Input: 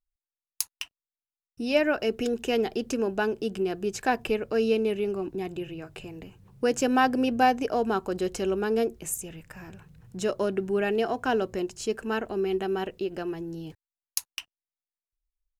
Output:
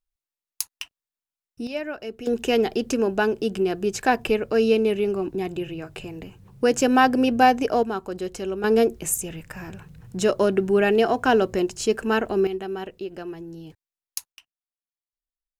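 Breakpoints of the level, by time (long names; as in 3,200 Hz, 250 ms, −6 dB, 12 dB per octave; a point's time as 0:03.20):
+1 dB
from 0:01.67 −7 dB
from 0:02.27 +5 dB
from 0:07.83 −1.5 dB
from 0:08.64 +7 dB
from 0:12.47 −2 dB
from 0:14.32 −13 dB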